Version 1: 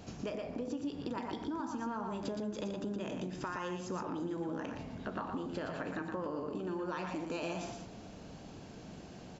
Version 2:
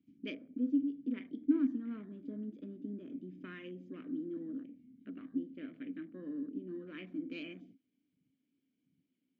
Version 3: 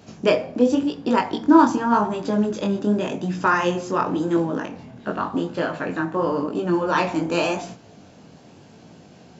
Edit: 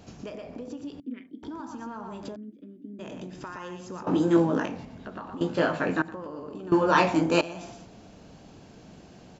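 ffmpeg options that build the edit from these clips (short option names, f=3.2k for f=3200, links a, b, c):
-filter_complex "[1:a]asplit=2[a][b];[2:a]asplit=3[c][d][e];[0:a]asplit=6[f][g][h][i][j][k];[f]atrim=end=1.002[l];[a]atrim=start=0.998:end=1.432[m];[g]atrim=start=1.428:end=2.362[n];[b]atrim=start=2.358:end=2.992[o];[h]atrim=start=2.988:end=4.072[p];[c]atrim=start=4.068:end=4.852[q];[i]atrim=start=4.848:end=5.412[r];[d]atrim=start=5.408:end=6.022[s];[j]atrim=start=6.018:end=6.722[t];[e]atrim=start=6.718:end=7.412[u];[k]atrim=start=7.408[v];[l][m]acrossfade=d=0.004:c1=hsin:c2=hsin[w];[w][n]acrossfade=d=0.004:c1=hsin:c2=hsin[x];[x][o]acrossfade=d=0.004:c1=hsin:c2=hsin[y];[y][p]acrossfade=d=0.004:c1=hsin:c2=hsin[z];[z][q]acrossfade=d=0.004:c1=hsin:c2=hsin[aa];[aa][r]acrossfade=d=0.004:c1=hsin:c2=hsin[ab];[ab][s]acrossfade=d=0.004:c1=hsin:c2=hsin[ac];[ac][t]acrossfade=d=0.004:c1=hsin:c2=hsin[ad];[ad][u]acrossfade=d=0.004:c1=hsin:c2=hsin[ae];[ae][v]acrossfade=d=0.004:c1=hsin:c2=hsin"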